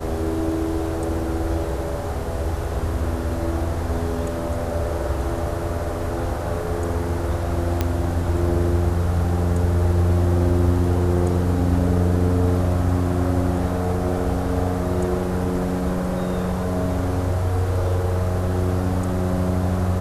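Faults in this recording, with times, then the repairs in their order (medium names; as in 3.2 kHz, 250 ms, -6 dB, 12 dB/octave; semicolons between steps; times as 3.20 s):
7.81 s: pop -7 dBFS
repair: de-click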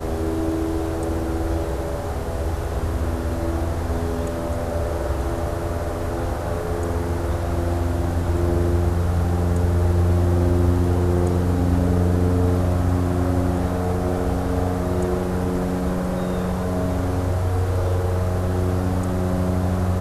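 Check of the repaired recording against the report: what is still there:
nothing left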